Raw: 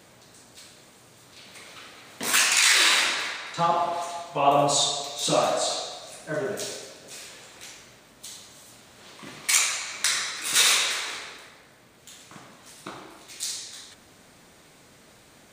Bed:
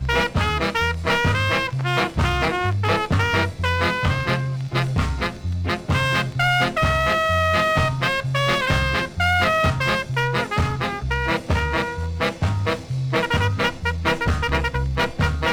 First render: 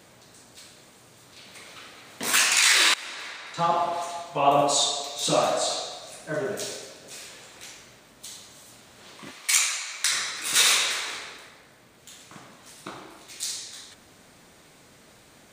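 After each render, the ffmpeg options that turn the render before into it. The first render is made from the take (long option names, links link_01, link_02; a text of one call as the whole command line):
ffmpeg -i in.wav -filter_complex "[0:a]asettb=1/sr,asplit=3[link_01][link_02][link_03];[link_01]atrim=end=4.614[link_04];[link_02]atrim=start=4.61:end=5.16,asetpts=PTS-STARTPTS,afade=type=in:duration=0.004:curve=qsin,afade=type=out:start_time=0.546:duration=0.004:curve=qsin,equalizer=frequency=130:width_type=o:width=0.77:gain=-11[link_05];[link_03]atrim=start=5.156[link_06];[link_04][link_05]acrossfade=duration=0.004:curve1=hsin:curve2=qsin[link_07];[link_07][link_06]acrossfade=duration=0.004:curve1=qsin:curve2=hsin,asettb=1/sr,asplit=3[link_08][link_09][link_10];[link_08]atrim=end=9.314[link_11];[link_09]atrim=start=9.31:end=10.12,asetpts=PTS-STARTPTS,afade=type=in:duration=0.004:curve=qsin,afade=type=out:start_time=0.806:duration=0.004:curve=qsin,highpass=frequency=1000:poles=1[link_12];[link_10]atrim=start=10.116[link_13];[link_11][link_12]acrossfade=duration=0.004:curve1=hsin:curve2=qsin[link_14];[link_14][link_13]acrossfade=duration=0.004:curve1=qsin:curve2=hsin,asplit=2[link_15][link_16];[link_15]atrim=end=2.94,asetpts=PTS-STARTPTS,afade=type=out:start_time=2.936:duration=0.004:curve=hsin:silence=0.0841395[link_17];[link_16]atrim=start=2.94,asetpts=PTS-STARTPTS,afade=type=in:duration=0.79:silence=0.0841395[link_18];[link_17][link_18]concat=n=2:v=0:a=1" out.wav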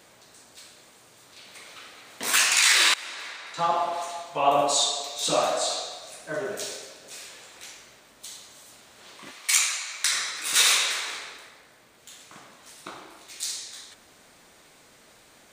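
ffmpeg -i in.wav -af "equalizer=frequency=120:width_type=o:width=2.7:gain=-7.5" out.wav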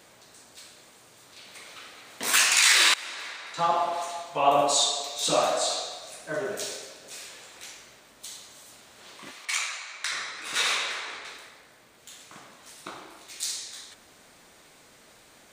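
ffmpeg -i in.wav -filter_complex "[0:a]asettb=1/sr,asplit=3[link_01][link_02][link_03];[link_01]atrim=end=9.454[link_04];[link_02]atrim=start=9.45:end=11.25,asetpts=PTS-STARTPTS,afade=type=in:duration=0.004:curve=qsin,afade=type=out:start_time=1.796:duration=0.004:curve=qsin,aemphasis=mode=reproduction:type=75kf[link_05];[link_03]atrim=start=11.246[link_06];[link_04][link_05]acrossfade=duration=0.004:curve1=hsin:curve2=qsin[link_07];[link_07][link_06]acrossfade=duration=0.004:curve1=qsin:curve2=hsin" out.wav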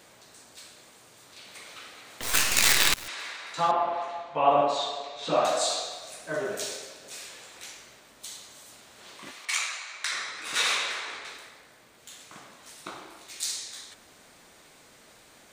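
ffmpeg -i in.wav -filter_complex "[0:a]asettb=1/sr,asplit=3[link_01][link_02][link_03];[link_01]atrim=end=2.214[link_04];[link_02]atrim=start=2.21:end=3.08,asetpts=PTS-STARTPTS,afade=type=in:duration=0.004:curve=qsin,afade=type=out:start_time=0.866:duration=0.004:curve=qsin,acrusher=bits=3:dc=4:mix=0:aa=0.000001[link_05];[link_03]atrim=start=3.076[link_06];[link_04][link_05]acrossfade=duration=0.004:curve1=hsin:curve2=qsin[link_07];[link_07][link_06]acrossfade=duration=0.004:curve1=qsin:curve2=hsin,asettb=1/sr,asplit=3[link_08][link_09][link_10];[link_08]atrim=end=3.714[link_11];[link_09]atrim=start=3.71:end=5.45,asetpts=PTS-STARTPTS,afade=type=in:duration=0.004:curve=qsin,afade=type=out:start_time=1.736:duration=0.004:curve=qsin,lowpass=2500[link_12];[link_10]atrim=start=5.446[link_13];[link_11][link_12]acrossfade=duration=0.004:curve1=hsin:curve2=qsin[link_14];[link_14][link_13]acrossfade=duration=0.004:curve1=qsin:curve2=hsin,asettb=1/sr,asplit=3[link_15][link_16][link_17];[link_15]atrim=end=9.704[link_18];[link_16]atrim=start=9.7:end=10.28,asetpts=PTS-STARTPTS,afade=type=in:duration=0.004:curve=qsin,afade=type=out:start_time=0.576:duration=0.004:curve=qsin,highpass=frequency=170:poles=1[link_19];[link_17]atrim=start=10.276[link_20];[link_18][link_19]acrossfade=duration=0.004:curve1=hsin:curve2=qsin[link_21];[link_21][link_20]acrossfade=duration=0.004:curve1=qsin:curve2=hsin" out.wav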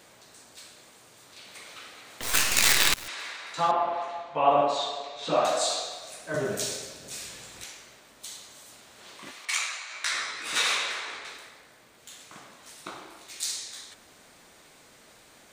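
ffmpeg -i in.wav -filter_complex "[0:a]asettb=1/sr,asplit=3[link_01][link_02][link_03];[link_01]atrim=end=6.344[link_04];[link_02]atrim=start=6.34:end=7.64,asetpts=PTS-STARTPTS,afade=type=in:duration=0.004:curve=qsin,afade=type=out:start_time=1.296:duration=0.004:curve=qsin,bass=frequency=250:gain=13,treble=frequency=4000:gain=4[link_05];[link_03]atrim=start=7.636[link_06];[link_04][link_05]acrossfade=duration=0.004:curve1=hsin:curve2=qsin[link_07];[link_07][link_06]acrossfade=duration=0.004:curve1=qsin:curve2=hsin,asettb=1/sr,asplit=3[link_08][link_09][link_10];[link_08]atrim=end=9.894[link_11];[link_09]atrim=start=9.89:end=10.59,asetpts=PTS-STARTPTS,afade=type=in:duration=0.004:curve=qsin,afade=type=out:start_time=0.696:duration=0.004:curve=qsin,asplit=2[link_12][link_13];[link_13]adelay=17,volume=-2dB[link_14];[link_12][link_14]amix=inputs=2:normalize=0,atrim=end_sample=30870[link_15];[link_10]atrim=start=10.586[link_16];[link_11][link_15]acrossfade=duration=0.004:curve1=hsin:curve2=qsin[link_17];[link_17][link_16]acrossfade=duration=0.004:curve1=qsin:curve2=hsin" out.wav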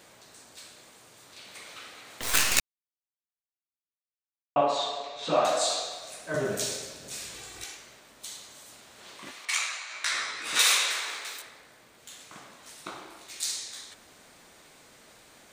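ffmpeg -i in.wav -filter_complex "[0:a]asettb=1/sr,asplit=3[link_01][link_02][link_03];[link_01]atrim=end=7.344[link_04];[link_02]atrim=start=7.34:end=7.76,asetpts=PTS-STARTPTS,afade=type=in:duration=0.004:curve=qsin,afade=type=out:start_time=0.416:duration=0.004:curve=qsin,aecho=1:1:2.6:0.65,atrim=end_sample=18522[link_05];[link_03]atrim=start=7.756[link_06];[link_04][link_05]acrossfade=duration=0.004:curve1=hsin:curve2=qsin[link_07];[link_07][link_06]acrossfade=duration=0.004:curve1=qsin:curve2=hsin,asettb=1/sr,asplit=3[link_08][link_09][link_10];[link_08]atrim=end=10.594[link_11];[link_09]atrim=start=10.59:end=11.42,asetpts=PTS-STARTPTS,afade=type=in:duration=0.004:curve=qsin,afade=type=out:start_time=0.826:duration=0.004:curve=qsin,aemphasis=mode=production:type=bsi[link_12];[link_10]atrim=start=11.416[link_13];[link_11][link_12]acrossfade=duration=0.004:curve1=hsin:curve2=qsin[link_14];[link_14][link_13]acrossfade=duration=0.004:curve1=qsin:curve2=hsin,asplit=3[link_15][link_16][link_17];[link_15]atrim=end=2.6,asetpts=PTS-STARTPTS,afade=type=out:start_time=2.596:duration=0.004:curve=hsin[link_18];[link_16]atrim=start=2.6:end=4.56,asetpts=PTS-STARTPTS,volume=0[link_19];[link_17]atrim=start=4.56,asetpts=PTS-STARTPTS,afade=type=in:duration=0.004:curve=hsin[link_20];[link_18][link_19][link_20]concat=n=3:v=0:a=1" out.wav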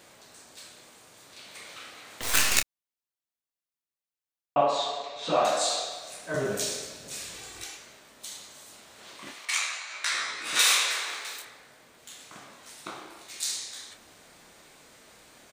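ffmpeg -i in.wav -filter_complex "[0:a]asplit=2[link_01][link_02];[link_02]adelay=29,volume=-8.5dB[link_03];[link_01][link_03]amix=inputs=2:normalize=0" out.wav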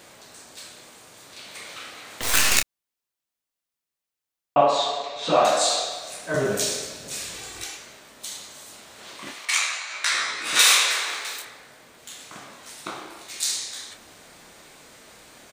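ffmpeg -i in.wav -af "volume=5.5dB,alimiter=limit=-2dB:level=0:latency=1" out.wav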